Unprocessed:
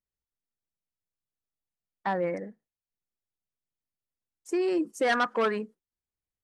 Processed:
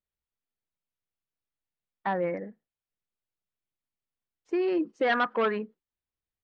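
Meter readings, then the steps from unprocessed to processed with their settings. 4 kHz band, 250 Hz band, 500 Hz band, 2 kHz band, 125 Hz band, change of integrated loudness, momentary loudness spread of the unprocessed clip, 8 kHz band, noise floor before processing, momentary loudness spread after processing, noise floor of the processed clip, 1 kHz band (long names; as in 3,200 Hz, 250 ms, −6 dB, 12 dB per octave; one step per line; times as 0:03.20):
−2.0 dB, 0.0 dB, 0.0 dB, 0.0 dB, 0.0 dB, 0.0 dB, 12 LU, below −20 dB, below −85 dBFS, 12 LU, below −85 dBFS, 0.0 dB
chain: low-pass filter 3,800 Hz 24 dB per octave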